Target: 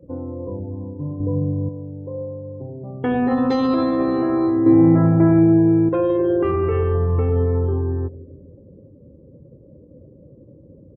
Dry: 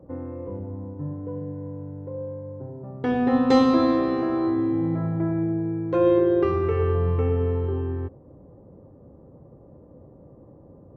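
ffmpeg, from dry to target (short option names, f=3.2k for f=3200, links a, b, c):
-filter_complex "[0:a]aecho=1:1:161|322|483|644:0.119|0.0606|0.0309|0.0158,alimiter=limit=-16dB:level=0:latency=1:release=14,asettb=1/sr,asplit=3[a][b][c];[a]atrim=end=1.204[d];[b]atrim=start=1.2:end=1.69,asetpts=PTS-STARTPTS,afade=t=in:d=0.004:c=qsin,afade=t=out:st=0.486:d=0.004:c=qsin,lowshelf=f=290:g=11.5[e];[c]atrim=start=1.686[f];[d][e]acrossfade=d=0.004:c1=hsin:c2=qsin[g];[g][f]acrossfade=d=0.004:c1=qsin:c2=hsin,asettb=1/sr,asplit=3[h][i][j];[h]atrim=end=4.664[k];[i]atrim=start=4.66:end=5.89,asetpts=PTS-STARTPTS,afade=t=in:d=0.004:c=qsin,afade=t=out:st=1.226:d=0.004:c=qsin,acontrast=85[l];[j]atrim=start=5.886[m];[k][l]acrossfade=d=0.004:c1=hsin:c2=qsin[n];[n][m]acrossfade=d=0.004:c1=qsin:c2=hsin,afftdn=nr=22:nf=-44,volume=4dB"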